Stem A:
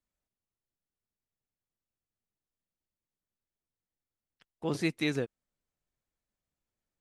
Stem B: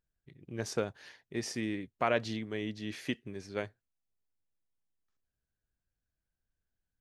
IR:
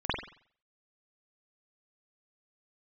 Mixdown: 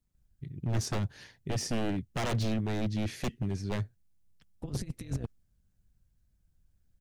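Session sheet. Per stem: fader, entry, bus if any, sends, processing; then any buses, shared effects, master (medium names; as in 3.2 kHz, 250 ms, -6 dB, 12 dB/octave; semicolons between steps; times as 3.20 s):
-5.0 dB, 0.00 s, no send, compressor with a negative ratio -36 dBFS, ratio -0.5; AM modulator 190 Hz, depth 65%
0.0 dB, 0.15 s, no send, none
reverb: none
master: tone controls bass +12 dB, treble +5 dB; wavefolder -28 dBFS; bass shelf 230 Hz +7 dB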